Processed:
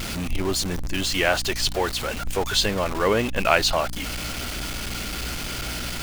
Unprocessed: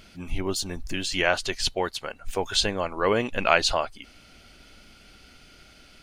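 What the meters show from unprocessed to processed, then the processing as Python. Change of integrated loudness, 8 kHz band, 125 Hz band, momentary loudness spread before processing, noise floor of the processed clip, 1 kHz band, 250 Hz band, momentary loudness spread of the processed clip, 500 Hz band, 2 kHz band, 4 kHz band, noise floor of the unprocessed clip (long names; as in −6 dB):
+1.5 dB, +5.0 dB, +7.0 dB, 11 LU, −31 dBFS, +2.0 dB, +4.5 dB, 9 LU, +2.5 dB, +2.5 dB, +3.5 dB, −53 dBFS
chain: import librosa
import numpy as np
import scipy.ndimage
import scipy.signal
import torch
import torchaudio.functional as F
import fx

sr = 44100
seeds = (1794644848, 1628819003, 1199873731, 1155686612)

y = x + 0.5 * 10.0 ** (-25.5 / 20.0) * np.sign(x)
y = fx.add_hum(y, sr, base_hz=60, snr_db=12)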